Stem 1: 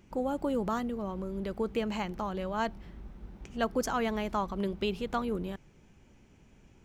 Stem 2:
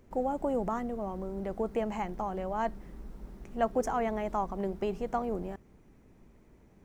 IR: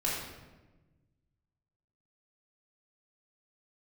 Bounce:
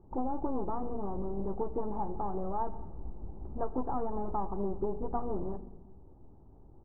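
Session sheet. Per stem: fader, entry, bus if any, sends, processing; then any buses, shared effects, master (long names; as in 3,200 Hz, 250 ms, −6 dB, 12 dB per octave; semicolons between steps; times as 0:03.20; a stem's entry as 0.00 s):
+1.0 dB, 0.00 s, send −18.5 dB, parametric band 490 Hz −9 dB 0.45 octaves; comb filter 2.4 ms, depth 47%; hum removal 47.78 Hz, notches 5
−3.0 dB, 15 ms, polarity flipped, send −22 dB, full-wave rectification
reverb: on, RT60 1.2 s, pre-delay 3 ms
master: Butterworth low-pass 1,000 Hz 36 dB per octave; downward compressor, threshold −27 dBFS, peak gain reduction 5.5 dB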